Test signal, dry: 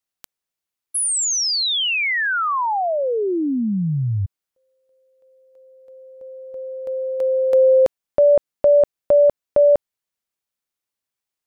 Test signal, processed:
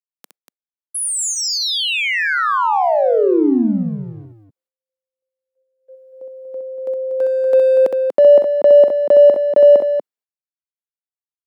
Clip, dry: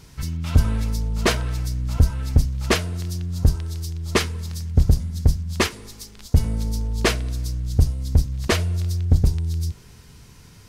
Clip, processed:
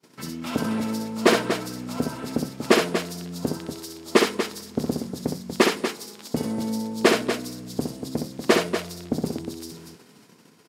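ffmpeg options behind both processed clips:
ffmpeg -i in.wav -filter_complex "[0:a]asplit=2[link_01][link_02];[link_02]asoftclip=type=hard:threshold=-21dB,volume=-7.5dB[link_03];[link_01][link_03]amix=inputs=2:normalize=0,agate=range=-33dB:threshold=-38dB:ratio=3:release=144:detection=rms,highpass=frequency=220:width=0.5412,highpass=frequency=220:width=1.3066,tiltshelf=frequency=1100:gain=4,bandreject=frequency=6100:width=20,asplit=2[link_04][link_05];[link_05]aecho=0:1:64.14|239.1:0.562|0.398[link_06];[link_04][link_06]amix=inputs=2:normalize=0" out.wav

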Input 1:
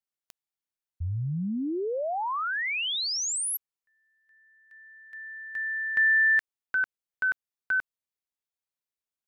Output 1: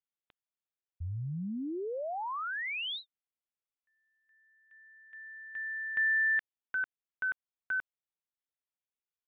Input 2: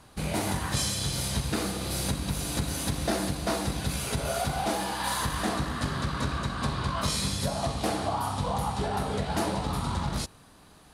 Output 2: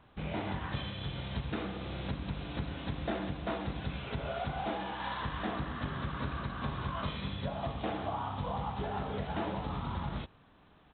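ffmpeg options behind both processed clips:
ffmpeg -i in.wav -af "aresample=8000,aresample=44100,volume=-6.5dB" out.wav

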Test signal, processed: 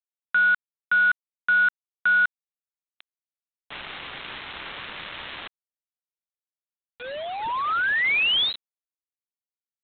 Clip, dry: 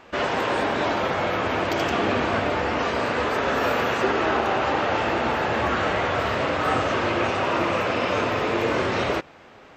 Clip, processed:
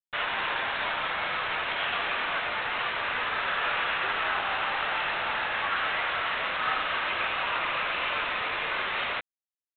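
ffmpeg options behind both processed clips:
ffmpeg -i in.wav -af "highpass=1300,aresample=8000,acrusher=bits=5:mix=0:aa=0.000001,aresample=44100" out.wav

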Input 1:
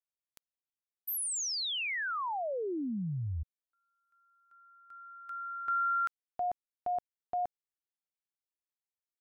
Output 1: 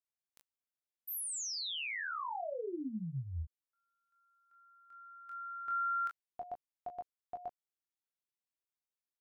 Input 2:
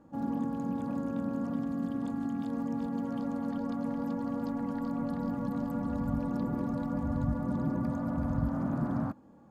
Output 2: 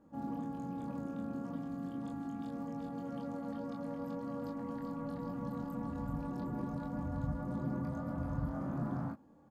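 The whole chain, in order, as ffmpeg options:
ffmpeg -i in.wav -af "aecho=1:1:23|37:0.668|0.398,volume=-7dB" out.wav

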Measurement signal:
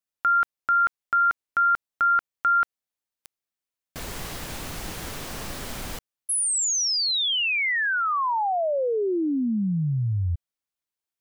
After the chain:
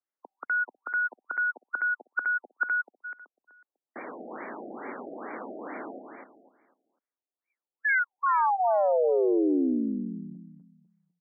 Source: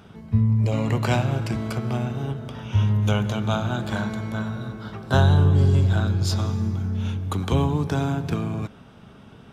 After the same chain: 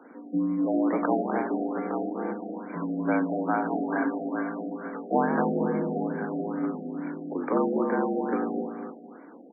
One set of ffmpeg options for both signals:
ffmpeg -i in.wav -af "aecho=1:1:249|498|747|996:0.501|0.15|0.0451|0.0135,highpass=frequency=180:width_type=q:width=0.5412,highpass=frequency=180:width_type=q:width=1.307,lowpass=frequency=3200:width_type=q:width=0.5176,lowpass=frequency=3200:width_type=q:width=0.7071,lowpass=frequency=3200:width_type=q:width=1.932,afreqshift=70,afftfilt=real='re*lt(b*sr/1024,760*pow(2400/760,0.5+0.5*sin(2*PI*2.3*pts/sr)))':imag='im*lt(b*sr/1024,760*pow(2400/760,0.5+0.5*sin(2*PI*2.3*pts/sr)))':win_size=1024:overlap=0.75" out.wav

